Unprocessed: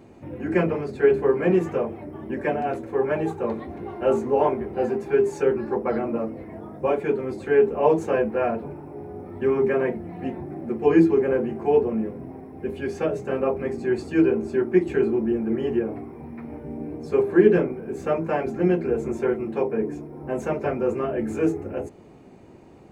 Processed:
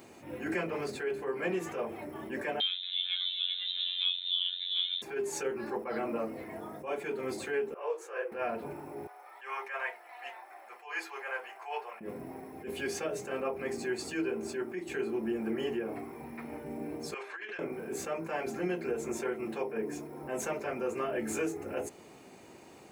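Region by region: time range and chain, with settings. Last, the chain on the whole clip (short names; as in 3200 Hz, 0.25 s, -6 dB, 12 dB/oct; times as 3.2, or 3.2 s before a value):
2.6–5.02 robotiser 90.1 Hz + echo 0.384 s -12.5 dB + inverted band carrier 3900 Hz
7.74–8.32 rippled Chebyshev high-pass 340 Hz, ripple 9 dB + detuned doubles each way 53 cents
9.07–12.01 HPF 780 Hz 24 dB/oct + high shelf 5400 Hz -8 dB
17.14–17.59 HPF 1500 Hz + air absorption 120 m + negative-ratio compressor -41 dBFS
whole clip: tilt +3.5 dB/oct; compressor 6:1, threshold -29 dBFS; attack slew limiter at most 130 dB/s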